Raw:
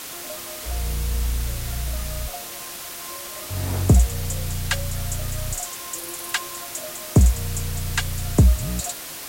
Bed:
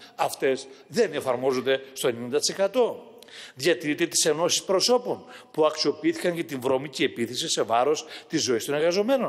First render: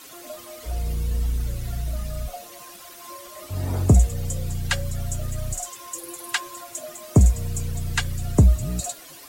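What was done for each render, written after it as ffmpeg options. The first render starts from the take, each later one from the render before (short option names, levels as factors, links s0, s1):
-af "afftdn=nr=12:nf=-35"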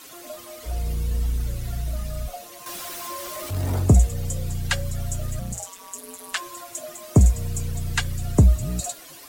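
-filter_complex "[0:a]asettb=1/sr,asplit=3[s0][s1][s2];[s0]atrim=end=2.664[s3];[s1]atrim=start=2.66:end=3.8,asetpts=PTS-STARTPTS,afade=t=in:d=0.004:c=qsin,afade=t=out:st=1.136:d=0.004:c=qsin,aeval=exprs='val(0)+0.5*0.0251*sgn(val(0))':c=same[s4];[s2]atrim=start=3.796[s5];[s3][s4]acrossfade=d=0.004:c1=hsin:c2=qsin[s6];[s6][s5]acrossfade=d=0.004:c1=qsin:c2=hsin,asettb=1/sr,asplit=3[s7][s8][s9];[s7]atrim=end=5.394[s10];[s8]atrim=start=5.39:end=6.37,asetpts=PTS-STARTPTS,afade=t=in:d=0.004:c=qsin,afade=t=out:st=0.976:d=0.004:c=qsin,aeval=exprs='val(0)*sin(2*PI*91*n/s)':c=same[s11];[s9]atrim=start=6.366[s12];[s10][s11]acrossfade=d=0.004:c1=hsin:c2=qsin[s13];[s13][s12]acrossfade=d=0.004:c1=qsin:c2=hsin"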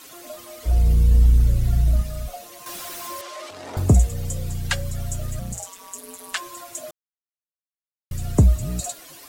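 -filter_complex "[0:a]asettb=1/sr,asplit=3[s0][s1][s2];[s0]atrim=end=0.654[s3];[s1]atrim=start=0.65:end=2.02,asetpts=PTS-STARTPTS,afade=t=in:d=0.004:c=qsin,afade=t=out:st=1.366:d=0.004:c=qsin,lowshelf=f=320:g=10.5[s4];[s2]atrim=start=2.016[s5];[s3][s4]acrossfade=d=0.004:c1=hsin:c2=qsin[s6];[s6][s5]acrossfade=d=0.004:c1=qsin:c2=hsin,asettb=1/sr,asplit=3[s7][s8][s9];[s7]atrim=end=3.214[s10];[s8]atrim=start=3.21:end=3.77,asetpts=PTS-STARTPTS,afade=t=in:d=0.004:c=qsin,afade=t=out:st=0.556:d=0.004:c=qsin,highpass=450,lowpass=5700[s11];[s9]atrim=start=3.766[s12];[s10][s11]acrossfade=d=0.004:c1=hsin:c2=qsin[s13];[s13][s12]acrossfade=d=0.004:c1=qsin:c2=hsin,asplit=3[s14][s15][s16];[s14]atrim=end=6.91,asetpts=PTS-STARTPTS,afade=t=out:st=6.906:d=0.004:c=hsin[s17];[s15]atrim=start=6.91:end=8.11,asetpts=PTS-STARTPTS,volume=0[s18];[s16]atrim=start=8.11,asetpts=PTS-STARTPTS,afade=t=in:d=0.004:c=hsin[s19];[s17][s18][s19]concat=n=3:v=0:a=1"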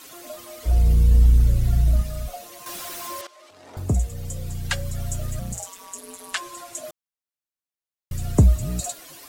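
-filter_complex "[0:a]asettb=1/sr,asplit=3[s0][s1][s2];[s0]atrim=end=5.854[s3];[s1]atrim=start=5.85:end=6.85,asetpts=PTS-STARTPTS,afade=t=in:d=0.004:c=qsin,afade=t=out:st=0.996:d=0.004:c=qsin,lowpass=12000[s4];[s2]atrim=start=6.846[s5];[s3][s4]acrossfade=d=0.004:c1=hsin:c2=qsin[s6];[s6][s5]acrossfade=d=0.004:c1=qsin:c2=hsin,asplit=2[s7][s8];[s7]atrim=end=3.27,asetpts=PTS-STARTPTS,afade=t=out:st=3.266:d=0.004:c=hsin:silence=0.149624[s9];[s8]atrim=start=3.27,asetpts=PTS-STARTPTS,afade=t=in:d=1.83:silence=0.149624[s10];[s9][s10]concat=n=2:v=0:a=1"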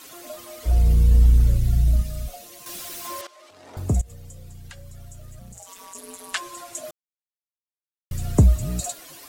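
-filter_complex "[0:a]asettb=1/sr,asplit=3[s0][s1][s2];[s0]atrim=end=1.574[s3];[s1]atrim=start=1.57:end=3.05,asetpts=PTS-STARTPTS,afade=t=in:d=0.004:c=qsin,afade=t=out:st=1.476:d=0.004:c=qsin,equalizer=f=1000:t=o:w=1.9:g=-7[s4];[s2]atrim=start=3.046[s5];[s3][s4]acrossfade=d=0.004:c1=hsin:c2=qsin[s6];[s6][s5]acrossfade=d=0.004:c1=qsin:c2=hsin,asettb=1/sr,asplit=3[s7][s8][s9];[s7]atrim=end=4.014[s10];[s8]atrim=start=4.01:end=5.95,asetpts=PTS-STARTPTS,afade=t=in:d=0.004:c=qsin,afade=t=out:st=1.936:d=0.004:c=qsin,acompressor=threshold=0.0141:ratio=16:attack=3.2:release=140:knee=1:detection=peak[s11];[s9]atrim=start=5.946[s12];[s10][s11]acrossfade=d=0.004:c1=hsin:c2=qsin[s13];[s13][s12]acrossfade=d=0.004:c1=qsin:c2=hsin,asettb=1/sr,asplit=3[s14][s15][s16];[s14]atrim=end=6.854[s17];[s15]atrim=start=6.85:end=8.43,asetpts=PTS-STARTPTS,afade=t=in:d=0.004:c=qsin,afade=t=out:st=1.576:d=0.004:c=qsin,acrusher=bits=8:mix=0:aa=0.5[s18];[s16]atrim=start=8.426[s19];[s17][s18]acrossfade=d=0.004:c1=hsin:c2=qsin[s20];[s20][s19]acrossfade=d=0.004:c1=qsin:c2=hsin"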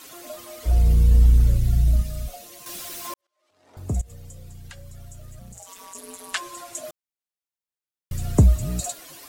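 -filter_complex "[0:a]asplit=2[s0][s1];[s0]atrim=end=3.14,asetpts=PTS-STARTPTS,afade=t=out:st=3.136:d=0.004:c=hsin[s2];[s1]atrim=start=3.14,asetpts=PTS-STARTPTS,afade=t=in:d=1.01:c=qua[s3];[s2][s3]concat=n=2:v=0:a=1"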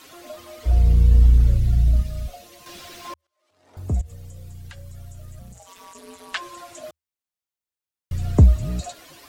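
-filter_complex "[0:a]acrossover=split=5400[s0][s1];[s1]acompressor=threshold=0.00251:ratio=4:attack=1:release=60[s2];[s0][s2]amix=inputs=2:normalize=0,equalizer=f=79:t=o:w=0.3:g=10"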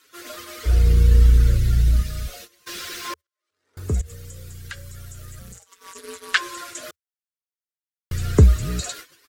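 -af "agate=range=0.112:threshold=0.00708:ratio=16:detection=peak,firequalizer=gain_entry='entry(270,0);entry(440,9);entry(660,-7);entry(1400,12);entry(2600,7);entry(4600,9)':delay=0.05:min_phase=1"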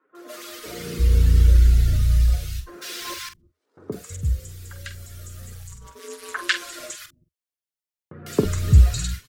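-filter_complex "[0:a]asplit=2[s0][s1];[s1]adelay=46,volume=0.316[s2];[s0][s2]amix=inputs=2:normalize=0,acrossover=split=170|1300[s3][s4][s5];[s5]adelay=150[s6];[s3]adelay=330[s7];[s7][s4][s6]amix=inputs=3:normalize=0"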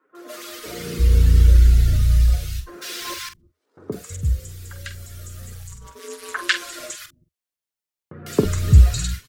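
-af "volume=1.26"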